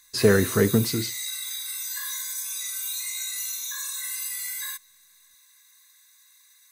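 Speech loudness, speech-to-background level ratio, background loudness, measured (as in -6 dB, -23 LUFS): -22.0 LUFS, 7.5 dB, -29.5 LUFS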